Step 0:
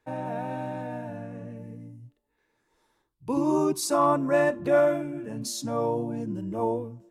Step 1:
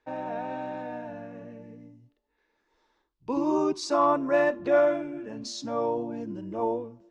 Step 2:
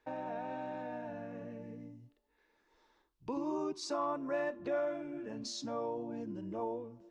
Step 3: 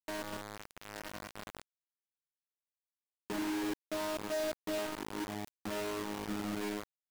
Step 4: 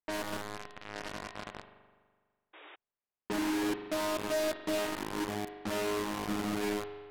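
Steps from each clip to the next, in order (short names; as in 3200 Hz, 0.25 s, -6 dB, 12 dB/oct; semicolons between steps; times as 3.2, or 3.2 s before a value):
LPF 5800 Hz 24 dB/oct; bell 130 Hz -12 dB 1 oct
compressor 2:1, threshold -43 dBFS, peak gain reduction 13.5 dB
chord vocoder bare fifth, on G#3; companded quantiser 2-bit; gain -7.5 dB
spring tank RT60 1.6 s, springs 41 ms, chirp 45 ms, DRR 8 dB; painted sound noise, 2.53–2.76, 290–3800 Hz -55 dBFS; low-pass opened by the level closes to 2000 Hz, open at -36 dBFS; gain +4 dB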